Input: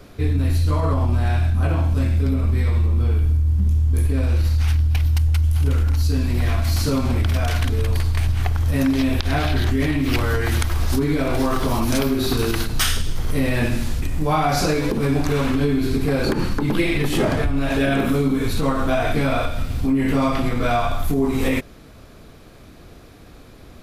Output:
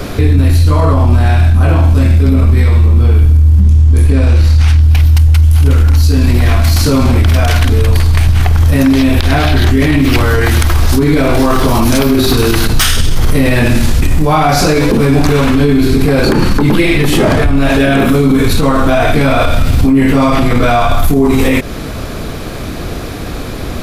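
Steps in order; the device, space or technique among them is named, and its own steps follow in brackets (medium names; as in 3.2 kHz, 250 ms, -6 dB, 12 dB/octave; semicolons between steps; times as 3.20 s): loud club master (compression 1.5:1, threshold -26 dBFS, peak gain reduction 4.5 dB; hard clipper -15 dBFS, distortion -38 dB; loudness maximiser +24 dB); 3.62–4.83 s: low-pass 9.6 kHz 12 dB/octave; trim -1 dB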